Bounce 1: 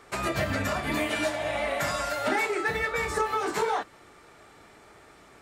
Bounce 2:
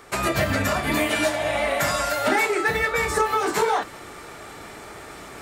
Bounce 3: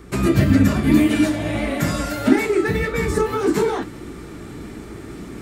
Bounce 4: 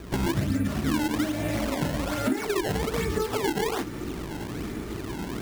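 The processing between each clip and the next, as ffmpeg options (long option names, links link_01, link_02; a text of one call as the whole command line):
ffmpeg -i in.wav -af "highshelf=frequency=11000:gain=8.5,areverse,acompressor=mode=upward:threshold=-36dB:ratio=2.5,areverse,volume=5.5dB" out.wav
ffmpeg -i in.wav -af "flanger=delay=2.7:depth=9.2:regen=75:speed=1.7:shape=triangular,aeval=exprs='val(0)+0.00126*(sin(2*PI*60*n/s)+sin(2*PI*2*60*n/s)/2+sin(2*PI*3*60*n/s)/3+sin(2*PI*4*60*n/s)/4+sin(2*PI*5*60*n/s)/5)':channel_layout=same,lowshelf=frequency=440:width_type=q:width=1.5:gain=13,volume=1.5dB" out.wav
ffmpeg -i in.wav -af "acrusher=samples=21:mix=1:aa=0.000001:lfo=1:lforange=33.6:lforate=1.2,acompressor=threshold=-26dB:ratio=4,volume=1dB" out.wav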